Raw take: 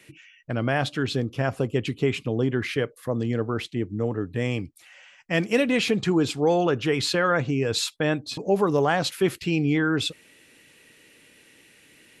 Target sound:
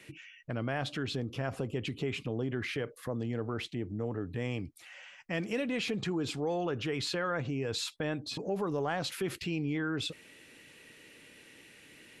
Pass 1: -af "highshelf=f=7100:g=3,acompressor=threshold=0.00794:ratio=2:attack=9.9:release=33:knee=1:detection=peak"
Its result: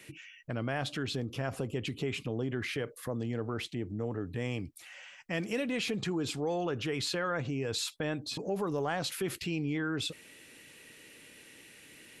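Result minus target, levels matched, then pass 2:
8 kHz band +3.0 dB
-af "highshelf=f=7100:g=-5.5,acompressor=threshold=0.00794:ratio=2:attack=9.9:release=33:knee=1:detection=peak"

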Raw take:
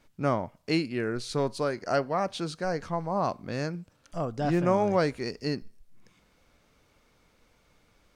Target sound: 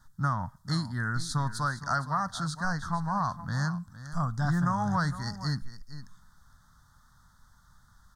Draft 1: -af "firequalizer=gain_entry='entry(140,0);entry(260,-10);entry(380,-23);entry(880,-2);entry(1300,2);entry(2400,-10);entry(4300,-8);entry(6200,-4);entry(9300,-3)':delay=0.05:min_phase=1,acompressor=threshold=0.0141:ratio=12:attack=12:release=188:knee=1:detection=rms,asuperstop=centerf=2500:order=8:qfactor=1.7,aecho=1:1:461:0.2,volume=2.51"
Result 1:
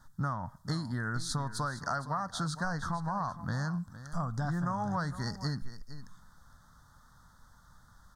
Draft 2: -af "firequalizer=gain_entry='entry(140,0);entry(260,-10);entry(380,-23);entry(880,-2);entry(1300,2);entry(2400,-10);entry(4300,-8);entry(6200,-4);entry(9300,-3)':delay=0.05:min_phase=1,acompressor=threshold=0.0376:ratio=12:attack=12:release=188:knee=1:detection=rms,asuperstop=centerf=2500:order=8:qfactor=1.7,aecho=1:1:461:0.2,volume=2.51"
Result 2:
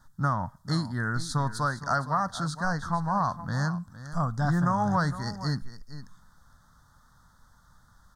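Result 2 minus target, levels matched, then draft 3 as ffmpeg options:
500 Hz band +5.0 dB
-af "firequalizer=gain_entry='entry(140,0);entry(260,-10);entry(380,-23);entry(880,-2);entry(1300,2);entry(2400,-10);entry(4300,-8);entry(6200,-4);entry(9300,-3)':delay=0.05:min_phase=1,acompressor=threshold=0.0376:ratio=12:attack=12:release=188:knee=1:detection=rms,asuperstop=centerf=2500:order=8:qfactor=1.7,equalizer=f=460:t=o:w=1.6:g=-8.5,aecho=1:1:461:0.2,volume=2.51"

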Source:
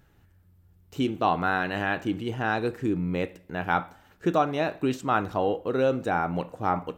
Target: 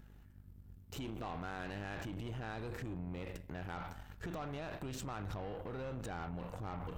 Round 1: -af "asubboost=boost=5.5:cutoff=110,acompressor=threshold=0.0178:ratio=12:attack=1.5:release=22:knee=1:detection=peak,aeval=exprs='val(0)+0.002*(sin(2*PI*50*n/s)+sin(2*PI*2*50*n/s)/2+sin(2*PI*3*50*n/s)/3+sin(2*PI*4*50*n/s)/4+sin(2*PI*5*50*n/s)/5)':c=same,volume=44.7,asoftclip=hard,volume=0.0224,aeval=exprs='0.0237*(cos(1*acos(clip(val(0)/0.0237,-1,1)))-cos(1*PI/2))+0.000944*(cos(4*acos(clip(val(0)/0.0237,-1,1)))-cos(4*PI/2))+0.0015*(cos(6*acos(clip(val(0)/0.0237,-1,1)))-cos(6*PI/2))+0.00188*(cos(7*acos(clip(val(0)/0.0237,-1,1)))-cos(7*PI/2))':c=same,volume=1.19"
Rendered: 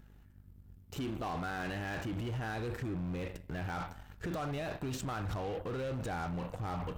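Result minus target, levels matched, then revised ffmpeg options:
compression: peak gain reduction -6 dB
-af "asubboost=boost=5.5:cutoff=110,acompressor=threshold=0.00841:ratio=12:attack=1.5:release=22:knee=1:detection=peak,aeval=exprs='val(0)+0.002*(sin(2*PI*50*n/s)+sin(2*PI*2*50*n/s)/2+sin(2*PI*3*50*n/s)/3+sin(2*PI*4*50*n/s)/4+sin(2*PI*5*50*n/s)/5)':c=same,volume=44.7,asoftclip=hard,volume=0.0224,aeval=exprs='0.0237*(cos(1*acos(clip(val(0)/0.0237,-1,1)))-cos(1*PI/2))+0.000944*(cos(4*acos(clip(val(0)/0.0237,-1,1)))-cos(4*PI/2))+0.0015*(cos(6*acos(clip(val(0)/0.0237,-1,1)))-cos(6*PI/2))+0.00188*(cos(7*acos(clip(val(0)/0.0237,-1,1)))-cos(7*PI/2))':c=same,volume=1.19"

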